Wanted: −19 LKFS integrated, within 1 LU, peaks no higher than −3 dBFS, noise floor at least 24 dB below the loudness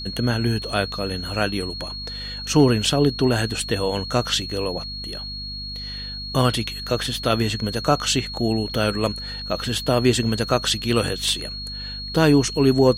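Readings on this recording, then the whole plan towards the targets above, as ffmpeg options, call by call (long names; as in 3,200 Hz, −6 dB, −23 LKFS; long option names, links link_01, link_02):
mains hum 50 Hz; hum harmonics up to 250 Hz; level of the hum −34 dBFS; interfering tone 4,300 Hz; level of the tone −31 dBFS; integrated loudness −22.5 LKFS; sample peak −4.0 dBFS; target loudness −19.0 LKFS
→ -af "bandreject=frequency=50:width_type=h:width=6,bandreject=frequency=100:width_type=h:width=6,bandreject=frequency=150:width_type=h:width=6,bandreject=frequency=200:width_type=h:width=6,bandreject=frequency=250:width_type=h:width=6"
-af "bandreject=frequency=4300:width=30"
-af "volume=3.5dB,alimiter=limit=-3dB:level=0:latency=1"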